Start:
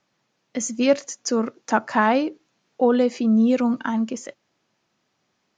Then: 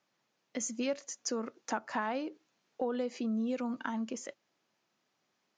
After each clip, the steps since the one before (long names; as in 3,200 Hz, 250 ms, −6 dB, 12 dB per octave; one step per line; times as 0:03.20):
high-pass filter 230 Hz 6 dB per octave
downward compressor 3 to 1, threshold −26 dBFS, peak gain reduction 10.5 dB
level −6.5 dB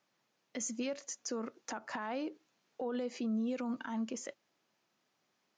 brickwall limiter −29 dBFS, peak gain reduction 10 dB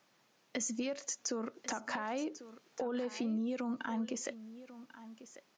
downward compressor 3 to 1, threshold −44 dBFS, peak gain reduction 9.5 dB
single-tap delay 1,094 ms −15 dB
level +8 dB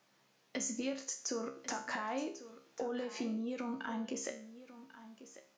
tuned comb filter 67 Hz, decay 0.45 s, harmonics all, mix 80%
level +7 dB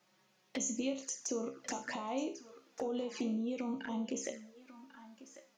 flanger swept by the level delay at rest 5.8 ms, full sweep at −36 dBFS
level +2.5 dB